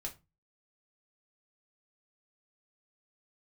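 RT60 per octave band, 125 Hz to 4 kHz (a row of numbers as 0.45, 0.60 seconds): 0.45, 0.40, 0.25, 0.25, 0.20, 0.20 seconds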